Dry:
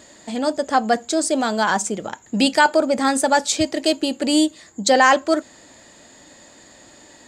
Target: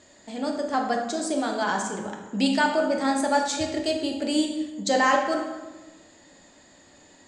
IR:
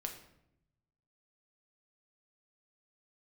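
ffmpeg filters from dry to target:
-filter_complex "[0:a]lowpass=8300[link_01];[1:a]atrim=start_sample=2205,asetrate=25137,aresample=44100[link_02];[link_01][link_02]afir=irnorm=-1:irlink=0,volume=-8.5dB"

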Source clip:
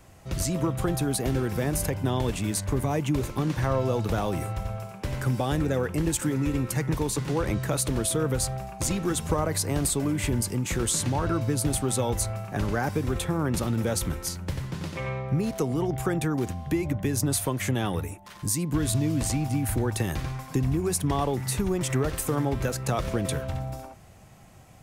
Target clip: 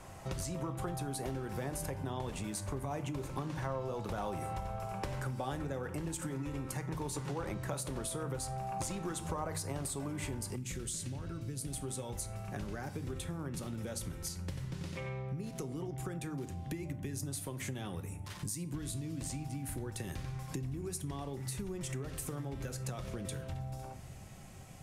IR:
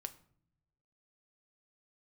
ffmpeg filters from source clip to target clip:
-filter_complex "[0:a]lowpass=12000,highshelf=frequency=6800:gain=4[link_01];[1:a]atrim=start_sample=2205[link_02];[link_01][link_02]afir=irnorm=-1:irlink=0,acompressor=threshold=-41dB:ratio=6,asetnsamples=nb_out_samples=441:pad=0,asendcmd='10.56 equalizer g -11.5;11.72 equalizer g -3.5',equalizer=frequency=900:width=0.9:gain=6,volume=3.5dB"

